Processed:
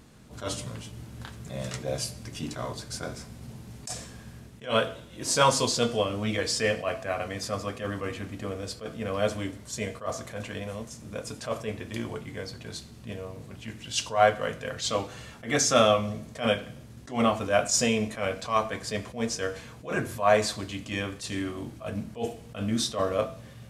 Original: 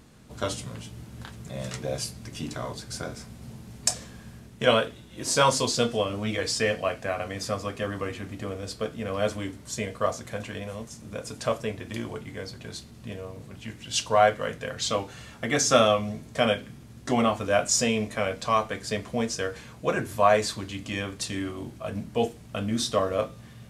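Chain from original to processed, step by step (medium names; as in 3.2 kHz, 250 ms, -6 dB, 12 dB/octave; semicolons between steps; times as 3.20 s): on a send at -18 dB: reverberation RT60 0.70 s, pre-delay 60 ms; on the sum: attacks held to a fixed rise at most 180 dB/s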